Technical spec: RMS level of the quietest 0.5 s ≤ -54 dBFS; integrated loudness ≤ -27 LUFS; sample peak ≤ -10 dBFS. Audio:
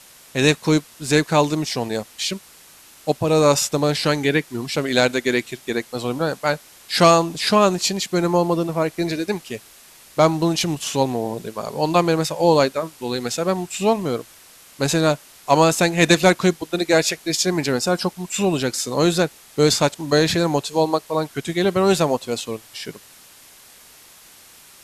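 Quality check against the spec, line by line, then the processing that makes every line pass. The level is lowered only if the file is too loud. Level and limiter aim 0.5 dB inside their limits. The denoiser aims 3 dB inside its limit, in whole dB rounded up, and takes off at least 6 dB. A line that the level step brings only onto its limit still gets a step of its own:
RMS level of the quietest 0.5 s -47 dBFS: fail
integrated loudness -20.0 LUFS: fail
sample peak -2.5 dBFS: fail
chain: trim -7.5 dB; peak limiter -10.5 dBFS

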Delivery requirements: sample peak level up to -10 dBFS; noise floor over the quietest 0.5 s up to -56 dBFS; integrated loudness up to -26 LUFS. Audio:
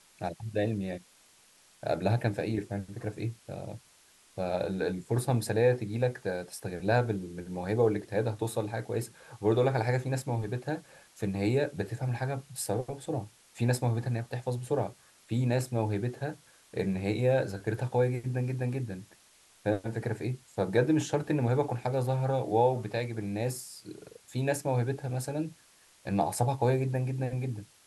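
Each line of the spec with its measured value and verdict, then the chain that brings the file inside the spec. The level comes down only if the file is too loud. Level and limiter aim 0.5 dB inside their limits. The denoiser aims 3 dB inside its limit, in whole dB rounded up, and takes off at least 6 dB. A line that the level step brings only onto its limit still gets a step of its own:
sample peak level -12.5 dBFS: pass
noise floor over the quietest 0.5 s -61 dBFS: pass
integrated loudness -31.5 LUFS: pass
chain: none needed

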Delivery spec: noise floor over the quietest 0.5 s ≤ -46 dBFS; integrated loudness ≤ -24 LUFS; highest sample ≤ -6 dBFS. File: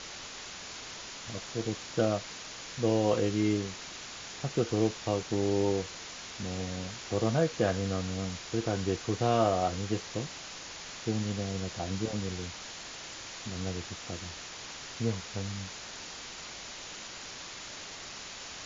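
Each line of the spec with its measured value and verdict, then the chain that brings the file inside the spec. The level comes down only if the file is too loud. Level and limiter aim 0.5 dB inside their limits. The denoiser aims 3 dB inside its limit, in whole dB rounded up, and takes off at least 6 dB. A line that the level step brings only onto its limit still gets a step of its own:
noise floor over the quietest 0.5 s -44 dBFS: fail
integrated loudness -33.5 LUFS: pass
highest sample -12.5 dBFS: pass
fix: noise reduction 6 dB, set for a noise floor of -44 dBFS

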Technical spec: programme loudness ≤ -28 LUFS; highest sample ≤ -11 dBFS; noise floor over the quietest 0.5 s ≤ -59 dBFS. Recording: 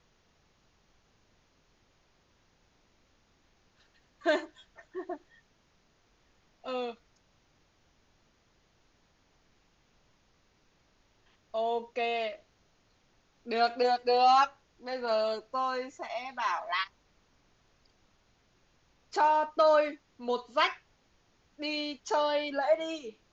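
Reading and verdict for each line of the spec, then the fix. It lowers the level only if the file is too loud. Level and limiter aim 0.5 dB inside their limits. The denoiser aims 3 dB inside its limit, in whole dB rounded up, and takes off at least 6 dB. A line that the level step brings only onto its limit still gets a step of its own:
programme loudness -30.0 LUFS: pass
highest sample -14.0 dBFS: pass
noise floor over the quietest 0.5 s -69 dBFS: pass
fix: none needed

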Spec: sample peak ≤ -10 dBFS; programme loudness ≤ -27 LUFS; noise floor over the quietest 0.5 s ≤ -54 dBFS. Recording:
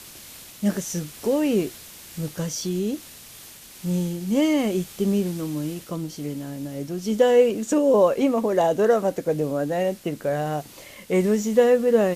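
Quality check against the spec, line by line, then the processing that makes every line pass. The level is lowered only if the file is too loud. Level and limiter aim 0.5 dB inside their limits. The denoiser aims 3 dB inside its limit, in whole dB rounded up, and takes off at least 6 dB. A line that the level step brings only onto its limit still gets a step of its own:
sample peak -6.5 dBFS: fail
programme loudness -23.0 LUFS: fail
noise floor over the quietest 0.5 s -44 dBFS: fail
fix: noise reduction 9 dB, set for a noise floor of -44 dBFS; trim -4.5 dB

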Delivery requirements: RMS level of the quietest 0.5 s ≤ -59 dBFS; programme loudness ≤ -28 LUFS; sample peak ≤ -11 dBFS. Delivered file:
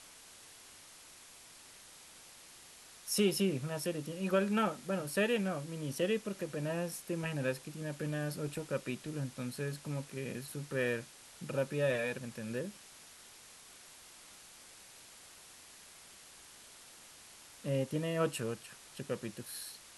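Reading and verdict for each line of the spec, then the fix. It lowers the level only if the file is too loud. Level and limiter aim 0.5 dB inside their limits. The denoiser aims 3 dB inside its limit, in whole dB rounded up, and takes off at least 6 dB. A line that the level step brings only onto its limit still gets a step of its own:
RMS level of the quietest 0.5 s -56 dBFS: fail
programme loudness -36.5 LUFS: pass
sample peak -18.0 dBFS: pass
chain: noise reduction 6 dB, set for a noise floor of -56 dBFS

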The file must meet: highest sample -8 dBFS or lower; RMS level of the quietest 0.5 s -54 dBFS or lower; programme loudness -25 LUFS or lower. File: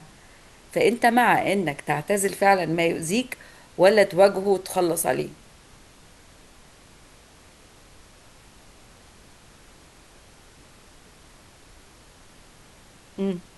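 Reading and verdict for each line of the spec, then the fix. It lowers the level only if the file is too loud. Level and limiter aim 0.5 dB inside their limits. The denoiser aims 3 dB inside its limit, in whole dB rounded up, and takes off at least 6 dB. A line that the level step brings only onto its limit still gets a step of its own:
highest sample -4.0 dBFS: fail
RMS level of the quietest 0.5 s -51 dBFS: fail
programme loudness -21.5 LUFS: fail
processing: trim -4 dB; peak limiter -8.5 dBFS

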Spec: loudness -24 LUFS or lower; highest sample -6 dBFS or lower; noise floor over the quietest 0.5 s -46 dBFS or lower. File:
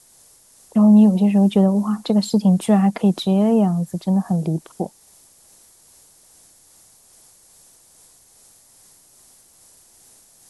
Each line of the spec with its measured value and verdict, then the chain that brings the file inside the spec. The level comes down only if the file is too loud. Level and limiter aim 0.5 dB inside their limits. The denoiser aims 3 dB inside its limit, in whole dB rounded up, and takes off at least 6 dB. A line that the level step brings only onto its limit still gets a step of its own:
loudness -17.5 LUFS: fail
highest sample -4.5 dBFS: fail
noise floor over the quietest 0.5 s -52 dBFS: pass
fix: trim -7 dB

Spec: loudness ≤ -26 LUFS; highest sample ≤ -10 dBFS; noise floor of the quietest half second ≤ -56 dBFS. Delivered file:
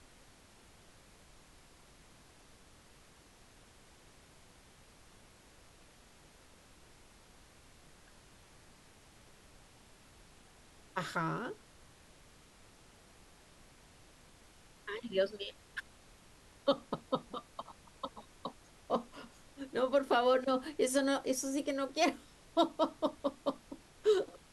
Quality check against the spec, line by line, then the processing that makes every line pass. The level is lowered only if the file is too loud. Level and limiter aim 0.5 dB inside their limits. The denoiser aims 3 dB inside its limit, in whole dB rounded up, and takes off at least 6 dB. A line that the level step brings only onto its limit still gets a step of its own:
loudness -35.5 LUFS: pass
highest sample -17.5 dBFS: pass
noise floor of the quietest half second -61 dBFS: pass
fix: none needed

